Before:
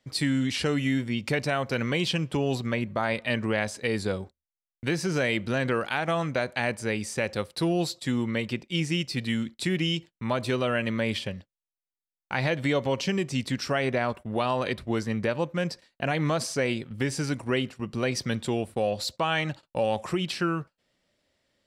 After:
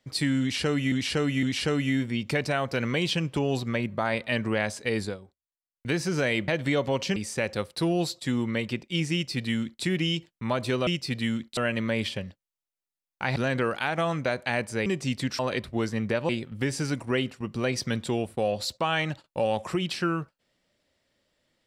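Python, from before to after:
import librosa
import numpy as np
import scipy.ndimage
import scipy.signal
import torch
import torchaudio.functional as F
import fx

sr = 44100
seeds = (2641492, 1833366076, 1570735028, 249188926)

y = fx.edit(x, sr, fx.repeat(start_s=0.41, length_s=0.51, count=3),
    fx.fade_down_up(start_s=4.01, length_s=0.84, db=-13.0, fade_s=0.14),
    fx.swap(start_s=5.46, length_s=1.5, other_s=12.46, other_length_s=0.68),
    fx.duplicate(start_s=8.93, length_s=0.7, to_s=10.67),
    fx.cut(start_s=13.67, length_s=0.86),
    fx.cut(start_s=15.43, length_s=1.25), tone=tone)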